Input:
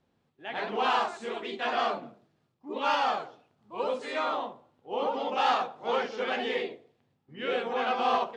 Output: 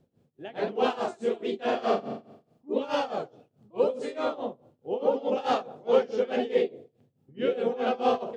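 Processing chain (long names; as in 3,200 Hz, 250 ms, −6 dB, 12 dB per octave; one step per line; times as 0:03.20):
graphic EQ with 10 bands 125 Hz +8 dB, 250 Hz +3 dB, 500 Hz +7 dB, 1,000 Hz −8 dB, 2,000 Hz −6 dB, 4,000 Hz −4 dB
0:01.64–0:02.70: flutter between parallel walls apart 7.5 metres, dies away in 0.75 s
amplitude tremolo 4.7 Hz, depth 88%
level +4.5 dB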